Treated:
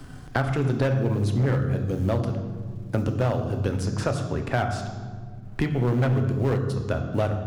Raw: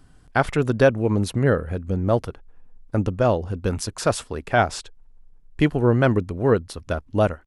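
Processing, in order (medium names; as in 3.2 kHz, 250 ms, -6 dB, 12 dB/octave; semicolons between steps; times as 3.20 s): companding laws mixed up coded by A; in parallel at +0.5 dB: compression, threshold -28 dBFS, peak gain reduction 16 dB; on the sum: treble shelf 8.9 kHz -6 dB; on a send at -6 dB: reverberation RT60 1.1 s, pre-delay 3 ms; on the sum: hard clipper -9.5 dBFS, distortion -13 dB; three bands compressed up and down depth 70%; trim -8 dB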